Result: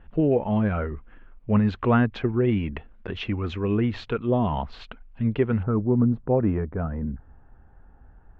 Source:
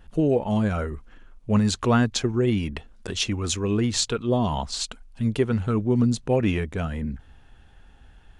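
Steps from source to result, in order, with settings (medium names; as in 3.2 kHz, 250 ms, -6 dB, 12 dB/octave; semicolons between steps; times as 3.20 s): low-pass 2.6 kHz 24 dB/octave, from 5.63 s 1.4 kHz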